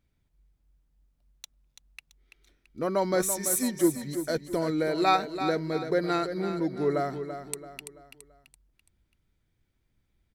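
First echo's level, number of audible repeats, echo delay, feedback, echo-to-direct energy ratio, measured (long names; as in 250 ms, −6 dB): −9.5 dB, 4, 335 ms, 41%, −8.5 dB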